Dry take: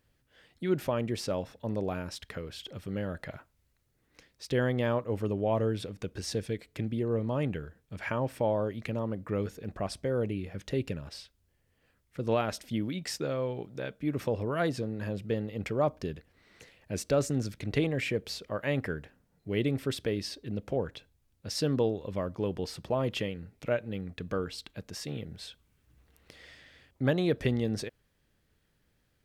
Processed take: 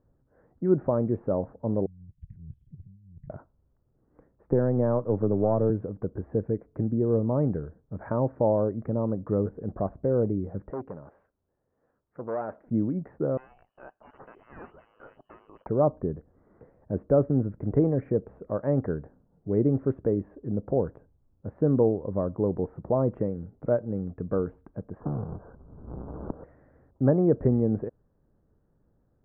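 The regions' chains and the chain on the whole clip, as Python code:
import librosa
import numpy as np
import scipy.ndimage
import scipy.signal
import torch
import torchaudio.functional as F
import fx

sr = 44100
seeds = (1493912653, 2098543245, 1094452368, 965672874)

y = fx.chain(x, sr, fx.ellip_bandstop(low_hz=150.0, high_hz=3500.0, order=3, stop_db=50),
    fx.over_compress(threshold_db=-48.0, ratio=-0.5), at=(1.86, 3.3))
y = fx.chain(y, sr, fx.halfwave_gain(db=-3.0),
    fx.high_shelf(hz=4800.0, db=-10.5),
    fx.band_squash(depth_pct=70), at=(4.47, 5.7))
y = fx.chain(y, sr, fx.riaa(side='recording'),
    fx.transformer_sat(knee_hz=3400.0), at=(10.7, 12.67))
y = fx.chain(y, sr, fx.clip_hard(threshold_db=-30.5),
    fx.freq_invert(carrier_hz=3100), at=(13.37, 15.67))
y = fx.chain(y, sr, fx.halfwave_hold(),
    fx.steep_lowpass(hz=1600.0, slope=96),
    fx.band_squash(depth_pct=100), at=(25.0, 26.44))
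y = scipy.signal.sosfilt(scipy.signal.bessel(8, 740.0, 'lowpass', norm='mag', fs=sr, output='sos'), y)
y = fx.peak_eq(y, sr, hz=67.0, db=-3.0, octaves=1.8)
y = y * librosa.db_to_amplitude(7.0)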